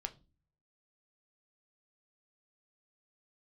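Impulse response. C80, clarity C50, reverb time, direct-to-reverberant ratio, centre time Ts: 25.5 dB, 19.0 dB, 0.30 s, 6.5 dB, 5 ms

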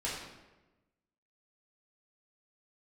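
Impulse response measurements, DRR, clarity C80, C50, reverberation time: -7.5 dB, 4.5 dB, 1.5 dB, 1.1 s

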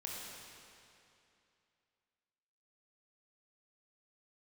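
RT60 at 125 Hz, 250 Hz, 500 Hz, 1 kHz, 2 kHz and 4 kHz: 2.7, 2.7, 2.7, 2.7, 2.6, 2.4 s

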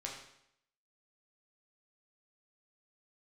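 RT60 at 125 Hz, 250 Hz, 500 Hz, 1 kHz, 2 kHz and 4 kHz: 0.75, 0.75, 0.75, 0.75, 0.75, 0.70 s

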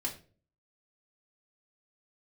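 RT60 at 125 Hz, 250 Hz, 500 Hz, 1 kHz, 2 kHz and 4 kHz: 0.60, 0.55, 0.50, 0.30, 0.30, 0.30 s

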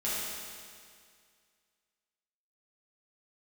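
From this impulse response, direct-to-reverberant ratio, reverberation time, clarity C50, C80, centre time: -10.0 dB, 2.1 s, -3.0 dB, -1.0 dB, 0.142 s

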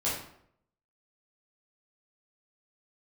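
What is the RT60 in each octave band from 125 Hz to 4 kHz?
0.80, 0.70, 0.70, 0.65, 0.55, 0.45 s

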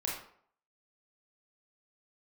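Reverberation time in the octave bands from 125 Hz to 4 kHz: 0.50, 0.55, 0.60, 0.60, 0.50, 0.40 s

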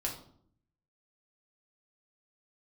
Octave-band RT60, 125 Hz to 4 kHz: 1.0, 0.85, 0.65, 0.55, 0.40, 0.40 s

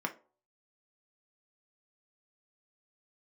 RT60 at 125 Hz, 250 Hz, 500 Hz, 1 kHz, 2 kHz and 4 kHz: 0.25, 0.35, 0.45, 0.40, 0.25, 0.20 s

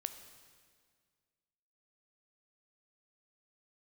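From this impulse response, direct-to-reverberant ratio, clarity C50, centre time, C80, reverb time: 8.5 dB, 10.0 dB, 18 ms, 11.0 dB, 1.9 s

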